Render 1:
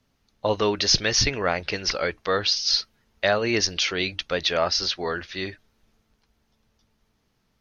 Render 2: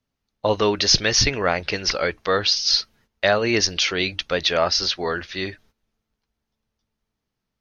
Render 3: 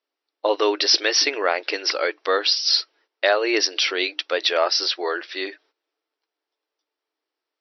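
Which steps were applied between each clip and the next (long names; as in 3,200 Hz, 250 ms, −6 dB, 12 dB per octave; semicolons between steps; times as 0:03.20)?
noise gate −56 dBFS, range −14 dB; level +3 dB
linear-phase brick-wall band-pass 280–5,900 Hz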